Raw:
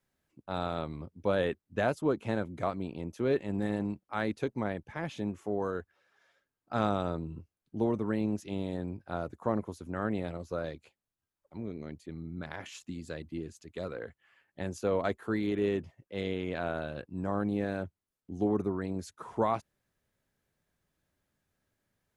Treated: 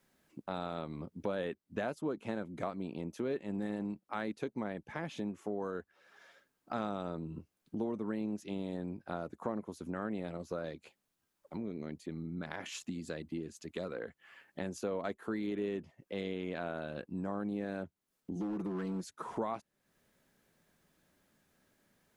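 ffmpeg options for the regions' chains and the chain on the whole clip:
-filter_complex "[0:a]asettb=1/sr,asplit=3[a][b][c];[a]atrim=end=18.354[d];[b]atrim=start=18.35:end=19.04,asetpts=PTS-STARTPTS,afade=t=in:d=0.004:c=qsin,afade=t=out:st=0.686:d=0.004:c=qsin,aecho=1:1:6:0.87,atrim=end_sample=30429,acompressor=threshold=-28dB:ratio=5:attack=3.2:release=140:knee=1:detection=peak,volume=29.5dB,asoftclip=hard,volume=-29.5dB[e];[c]atrim=start=19.036[f];[d][e]acrossfade=d=0.004:c1=hsin:c2=qsin[g];[g][f]acrossfade=d=0.004:c1=qsin:c2=hsin,lowshelf=f=140:t=q:w=1.5:g=-6.5,acompressor=threshold=-50dB:ratio=2.5,volume=8.5dB"

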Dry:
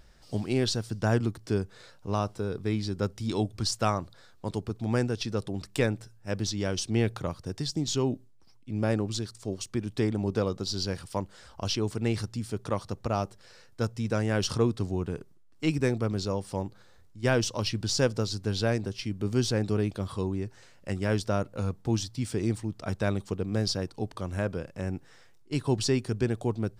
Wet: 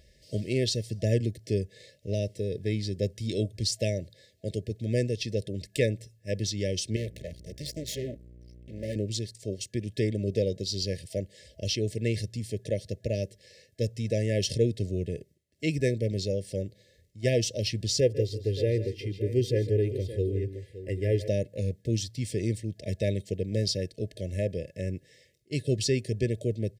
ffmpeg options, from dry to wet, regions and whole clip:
-filter_complex "[0:a]asettb=1/sr,asplit=3[a][b][c];[a]atrim=end=6.964[d];[b]atrim=start=6.96:end=8.96,asetpts=PTS-STARTPTS,afade=t=in:d=0.004:c=qsin,afade=t=out:st=1.996:d=0.004:c=qsin,highpass=55,aeval=exprs='val(0)+0.00708*(sin(2*PI*60*n/s)+sin(2*PI*2*60*n/s)/2+sin(2*PI*3*60*n/s)/3+sin(2*PI*4*60*n/s)/4+sin(2*PI*5*60*n/s)/5)':c=same,aeval=exprs='max(val(0),0)':c=same[e];[c]atrim=start=8.956[f];[d][e]acrossfade=d=0.004:c1=hsin:c2=qsin[g];[g][f]acrossfade=d=0.004:c1=qsin:c2=hsin,asettb=1/sr,asplit=3[h][i][j];[h]atrim=end=18.004[k];[i]atrim=start=18:end=21.28,asetpts=PTS-STARTPTS,afade=t=in:d=0.004:c=qsin,afade=t=out:st=3.276:d=0.004:c=qsin,equalizer=f=6.2k:w=0.59:g=-12.5,aecho=1:1:2.5:0.59,atrim=end_sample=144648,aecho=1:1:145|166|570:0.168|0.158|0.224,atrim=end_sample=144648[l];[j]atrim=start=21.276[m];[k][l]acrossfade=d=0.004:c1=hsin:c2=qsin[n];[n][m]acrossfade=d=0.004:c1=qsin:c2=hsin,highpass=56,afftfilt=real='re*(1-between(b*sr/4096,650,1700))':imag='im*(1-between(b*sr/4096,650,1700))':win_size=4096:overlap=0.75,aecho=1:1:1.9:0.36"

